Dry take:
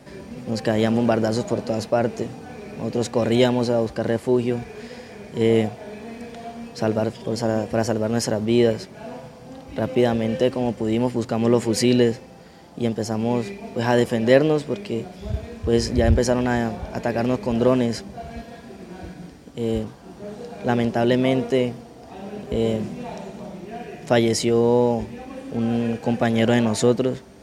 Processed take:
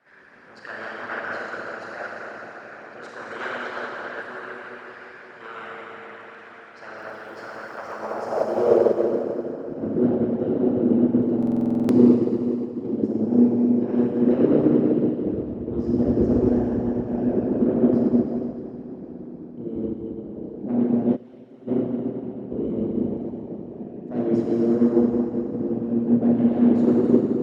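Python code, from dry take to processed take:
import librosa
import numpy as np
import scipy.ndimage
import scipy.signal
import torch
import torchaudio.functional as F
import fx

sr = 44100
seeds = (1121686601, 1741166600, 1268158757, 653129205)

y = fx.reverse_delay(x, sr, ms=176, wet_db=-7.0)
y = fx.fold_sine(y, sr, drive_db=10, ceiling_db=-2.0)
y = fx.filter_sweep_bandpass(y, sr, from_hz=1500.0, to_hz=270.0, start_s=7.59, end_s=9.22, q=4.0)
y = fx.echo_tape(y, sr, ms=488, feedback_pct=79, wet_db=-17, lp_hz=3800.0, drive_db=7.0, wow_cents=34)
y = fx.dmg_crackle(y, sr, seeds[0], per_s=86.0, level_db=-36.0, at=(6.97, 8.58), fade=0.02)
y = fx.low_shelf(y, sr, hz=360.0, db=5.5)
y = fx.rev_schroeder(y, sr, rt60_s=3.5, comb_ms=29, drr_db=-7.5)
y = fx.hpss(y, sr, part='harmonic', gain_db=-12)
y = fx.pre_emphasis(y, sr, coefficient=0.9, at=(21.15, 21.67), fade=0.02)
y = fx.buffer_glitch(y, sr, at_s=(11.38,), block=2048, repeats=10)
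y = fx.upward_expand(y, sr, threshold_db=-24.0, expansion=1.5)
y = F.gain(torch.from_numpy(y), -3.0).numpy()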